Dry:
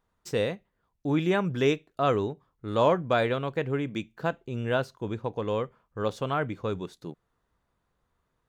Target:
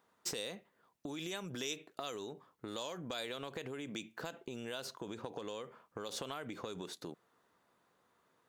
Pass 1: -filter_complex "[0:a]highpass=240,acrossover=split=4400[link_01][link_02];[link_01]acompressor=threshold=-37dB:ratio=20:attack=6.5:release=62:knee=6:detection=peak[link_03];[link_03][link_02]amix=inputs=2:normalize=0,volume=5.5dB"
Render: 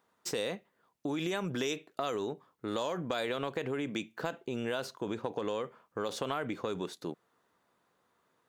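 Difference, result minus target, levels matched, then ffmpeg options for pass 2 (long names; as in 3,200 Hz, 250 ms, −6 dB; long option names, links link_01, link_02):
downward compressor: peak gain reduction −9.5 dB
-filter_complex "[0:a]highpass=240,acrossover=split=4400[link_01][link_02];[link_01]acompressor=threshold=-47dB:ratio=20:attack=6.5:release=62:knee=6:detection=peak[link_03];[link_03][link_02]amix=inputs=2:normalize=0,volume=5.5dB"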